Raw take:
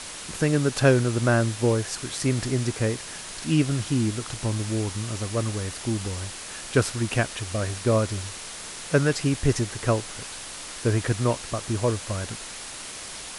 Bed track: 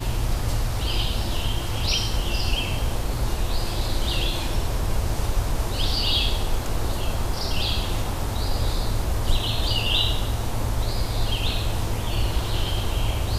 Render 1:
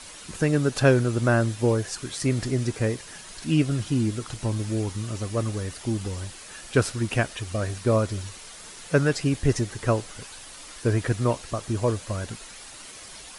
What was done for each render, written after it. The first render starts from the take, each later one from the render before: denoiser 8 dB, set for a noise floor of -38 dBFS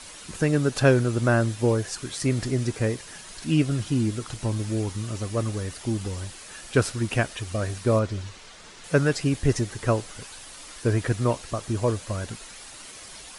7.99–8.84 air absorption 77 m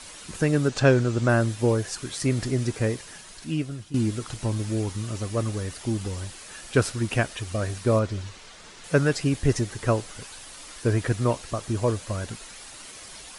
0.68–1.29 steep low-pass 8300 Hz; 2.97–3.94 fade out, to -15 dB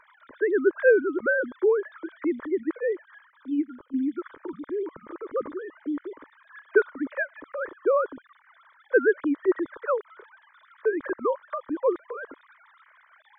sine-wave speech; fixed phaser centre 740 Hz, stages 6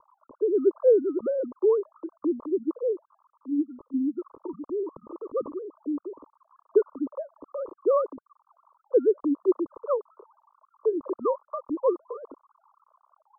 spectral gate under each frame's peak -30 dB strong; steep low-pass 1200 Hz 96 dB/oct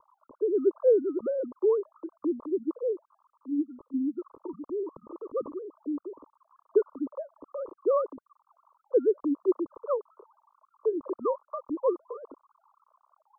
gain -2.5 dB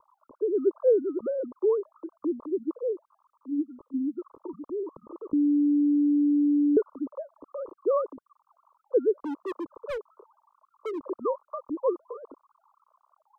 5.33–6.77 bleep 291 Hz -19 dBFS; 9.16–11.04 overloaded stage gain 29.5 dB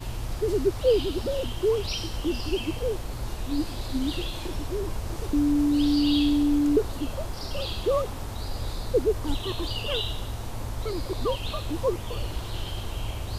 add bed track -8 dB

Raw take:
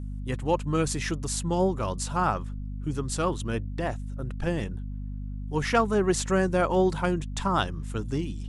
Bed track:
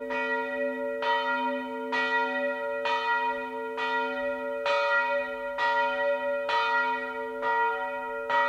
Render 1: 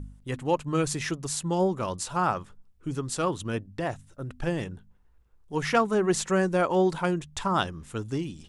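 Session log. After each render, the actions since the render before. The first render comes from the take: de-hum 50 Hz, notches 5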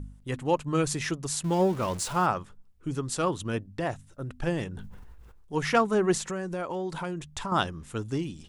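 1.44–2.26 zero-crossing step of -36.5 dBFS; 4.72–5.59 sustainer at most 23 dB/s; 6.17–7.52 compressor 4:1, threshold -30 dBFS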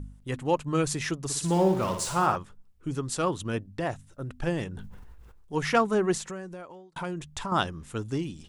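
1.21–2.36 flutter echo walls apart 10 m, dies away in 0.5 s; 5.94–6.96 fade out linear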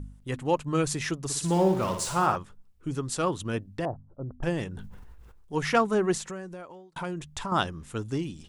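3.85–4.43 inverse Chebyshev low-pass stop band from 2500 Hz, stop band 50 dB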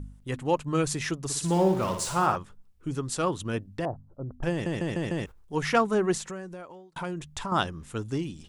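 4.51 stutter in place 0.15 s, 5 plays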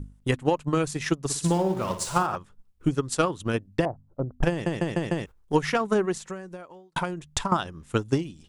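limiter -18.5 dBFS, peak gain reduction 8 dB; transient shaper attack +11 dB, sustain -5 dB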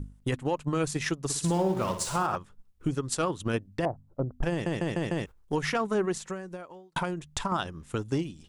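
limiter -18.5 dBFS, peak gain reduction 9 dB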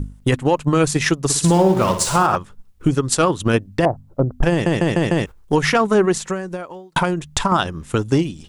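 gain +12 dB

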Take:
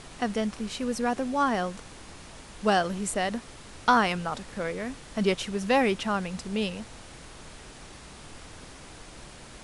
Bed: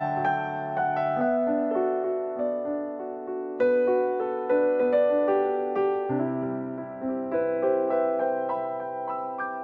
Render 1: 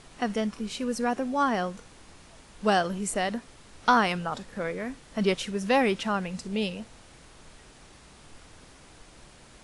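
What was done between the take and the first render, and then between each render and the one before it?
noise print and reduce 6 dB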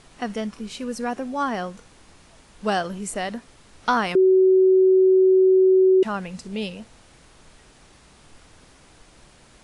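4.15–6.03 bleep 376 Hz -12 dBFS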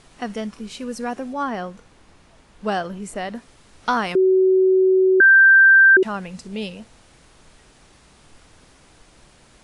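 1.33–3.35 high shelf 4100 Hz -7.5 dB; 5.2–5.97 bleep 1570 Hz -7.5 dBFS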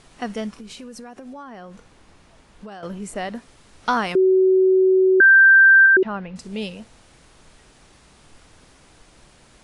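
0.52–2.83 compressor 16:1, threshold -34 dBFS; 5.86–6.36 air absorption 290 m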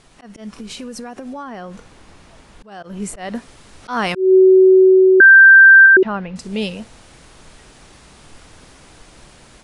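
auto swell 0.199 s; AGC gain up to 7 dB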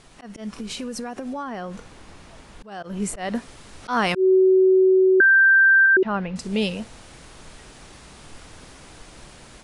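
compressor 3:1, threshold -16 dBFS, peak gain reduction 8.5 dB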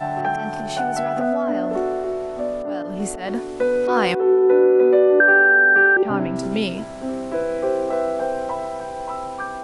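add bed +2.5 dB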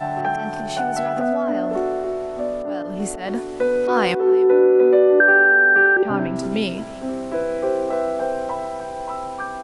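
echo 0.303 s -22.5 dB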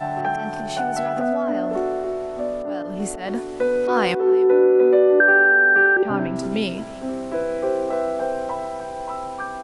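gain -1 dB

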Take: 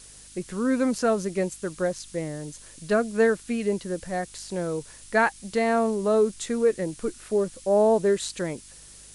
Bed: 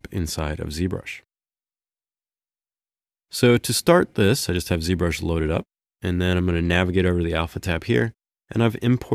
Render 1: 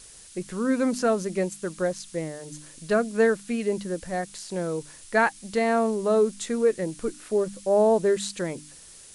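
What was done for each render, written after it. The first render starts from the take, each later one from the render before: de-hum 50 Hz, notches 6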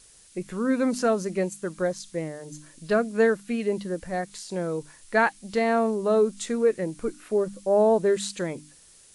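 noise print and reduce 6 dB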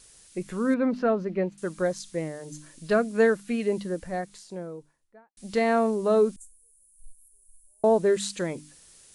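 0.74–1.58 air absorption 340 m; 3.73–5.37 studio fade out; 6.36–7.84 inverse Chebyshev band-stop 120–3600 Hz, stop band 60 dB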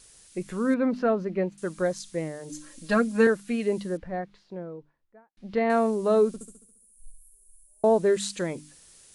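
2.49–3.27 comb 3.7 ms, depth 87%; 3.97–5.7 air absorption 310 m; 6.27–7.86 flutter echo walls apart 11.9 m, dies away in 0.75 s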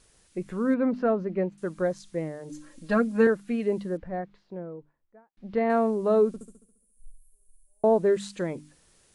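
high shelf 2900 Hz -11.5 dB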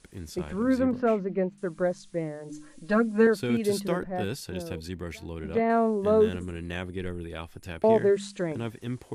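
add bed -14.5 dB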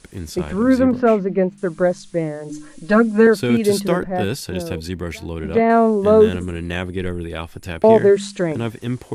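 gain +9.5 dB; limiter -3 dBFS, peak gain reduction 2 dB

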